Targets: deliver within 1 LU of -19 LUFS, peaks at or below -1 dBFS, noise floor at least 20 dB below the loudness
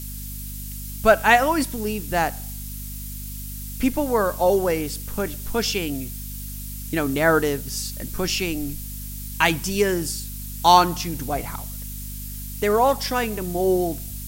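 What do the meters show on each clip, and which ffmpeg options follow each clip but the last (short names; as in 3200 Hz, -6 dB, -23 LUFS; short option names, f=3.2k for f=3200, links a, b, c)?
hum 50 Hz; harmonics up to 250 Hz; hum level -32 dBFS; noise floor -33 dBFS; noise floor target -43 dBFS; loudness -23.0 LUFS; peak -2.0 dBFS; loudness target -19.0 LUFS
-> -af "bandreject=f=50:t=h:w=6,bandreject=f=100:t=h:w=6,bandreject=f=150:t=h:w=6,bandreject=f=200:t=h:w=6,bandreject=f=250:t=h:w=6"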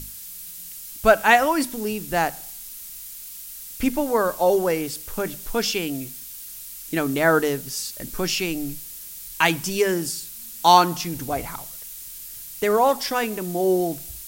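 hum none; noise floor -38 dBFS; noise floor target -42 dBFS
-> -af "afftdn=nr=6:nf=-38"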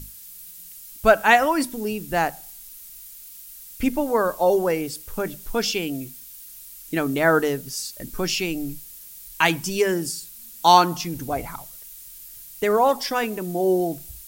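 noise floor -43 dBFS; loudness -22.5 LUFS; peak -2.0 dBFS; loudness target -19.0 LUFS
-> -af "volume=3.5dB,alimiter=limit=-1dB:level=0:latency=1"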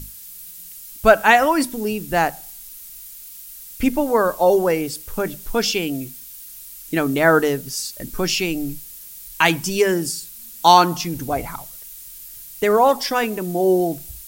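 loudness -19.0 LUFS; peak -1.0 dBFS; noise floor -39 dBFS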